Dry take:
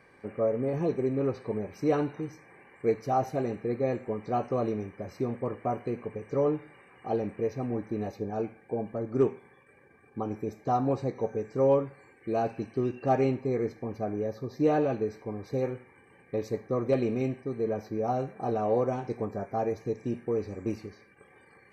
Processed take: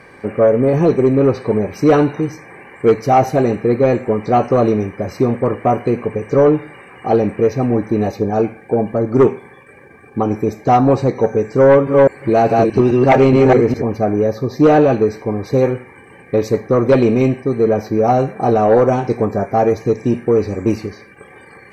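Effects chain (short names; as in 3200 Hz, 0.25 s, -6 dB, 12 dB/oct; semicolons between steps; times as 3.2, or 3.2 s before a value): 11.66–13.82 reverse delay 0.208 s, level -1 dB; sine folder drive 7 dB, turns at -10 dBFS; gain +5.5 dB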